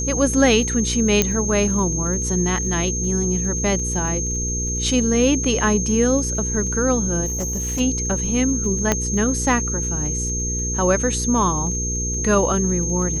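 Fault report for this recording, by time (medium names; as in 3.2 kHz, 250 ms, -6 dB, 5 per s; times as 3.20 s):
crackle 21 per s -30 dBFS
hum 60 Hz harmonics 8 -26 dBFS
whine 6.4 kHz -24 dBFS
1.22 s: pop -1 dBFS
7.25–7.81 s: clipped -20.5 dBFS
8.92 s: pop -3 dBFS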